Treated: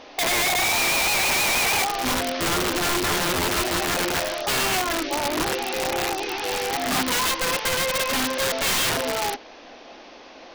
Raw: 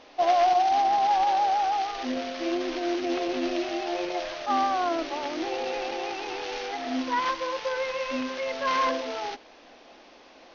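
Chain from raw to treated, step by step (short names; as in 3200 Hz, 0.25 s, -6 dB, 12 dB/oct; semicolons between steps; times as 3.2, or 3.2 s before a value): compressor 8:1, threshold -24 dBFS, peak gain reduction 6.5 dB; 4.41–6.44 LFO notch sine 1.4 Hz 490–5700 Hz; wrapped overs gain 25.5 dB; gain +7.5 dB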